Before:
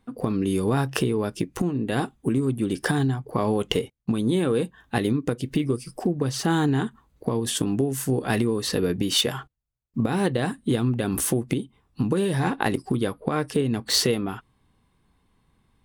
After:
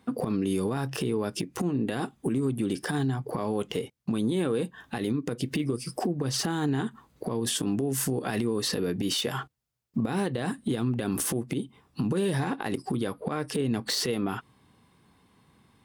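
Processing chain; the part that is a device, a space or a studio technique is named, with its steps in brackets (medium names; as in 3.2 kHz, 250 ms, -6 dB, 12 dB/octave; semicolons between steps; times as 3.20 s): broadcast voice chain (high-pass 110 Hz 12 dB/octave; de-esser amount 40%; compression 4:1, threshold -30 dBFS, peak gain reduction 11 dB; peaking EQ 5.1 kHz +3 dB 0.25 oct; peak limiter -25 dBFS, peak gain reduction 11 dB); trim +6.5 dB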